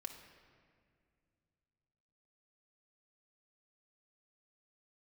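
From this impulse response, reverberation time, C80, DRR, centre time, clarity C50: 2.2 s, 8.5 dB, 2.5 dB, 32 ms, 7.0 dB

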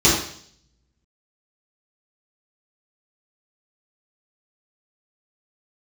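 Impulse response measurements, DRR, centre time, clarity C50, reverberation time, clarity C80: -9.5 dB, 45 ms, 2.5 dB, 0.60 s, 6.5 dB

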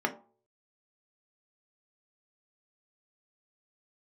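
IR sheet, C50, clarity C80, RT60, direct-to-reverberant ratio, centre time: 14.5 dB, 18.5 dB, 0.45 s, 2.5 dB, 8 ms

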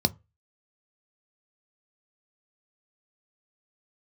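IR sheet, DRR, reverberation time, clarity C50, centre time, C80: 11.0 dB, no single decay rate, 26.5 dB, 3 ms, 33.5 dB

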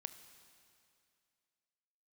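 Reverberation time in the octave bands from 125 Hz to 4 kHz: 2.3 s, 2.4 s, 2.5 s, 2.4 s, 2.4 s, 2.4 s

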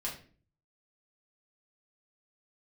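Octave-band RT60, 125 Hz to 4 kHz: 0.75 s, 0.60 s, 0.50 s, 0.35 s, 0.40 s, 0.35 s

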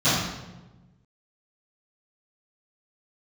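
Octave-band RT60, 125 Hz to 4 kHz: 1.8 s, 1.6 s, 1.2 s, 1.0 s, 0.85 s, 0.75 s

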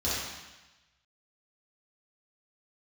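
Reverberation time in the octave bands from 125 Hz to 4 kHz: 1.2 s, 1.1 s, 1.0 s, 1.1 s, 1.2 s, 1.2 s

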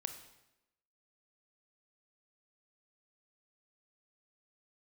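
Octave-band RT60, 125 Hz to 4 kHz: 0.85 s, 1.0 s, 0.95 s, 0.90 s, 0.85 s, 0.80 s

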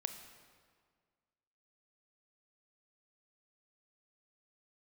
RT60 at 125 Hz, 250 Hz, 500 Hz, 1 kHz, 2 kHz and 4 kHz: 1.9 s, 1.9 s, 1.8 s, 1.8 s, 1.5 s, 1.3 s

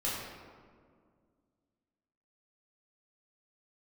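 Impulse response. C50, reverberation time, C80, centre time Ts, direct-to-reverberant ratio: 0.0 dB, 2.0 s, 2.0 dB, 95 ms, -8.0 dB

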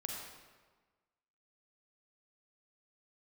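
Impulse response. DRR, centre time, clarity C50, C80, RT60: -0.5 dB, 72 ms, 0.5 dB, 2.0 dB, 1.4 s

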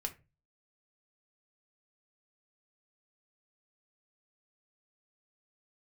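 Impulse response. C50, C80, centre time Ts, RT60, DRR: 15.5 dB, 23.0 dB, 7 ms, 0.30 s, 4.0 dB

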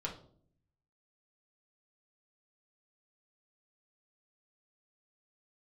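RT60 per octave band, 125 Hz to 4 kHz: 1.1 s, 0.90 s, 0.65 s, 0.45 s, 0.30 s, 0.35 s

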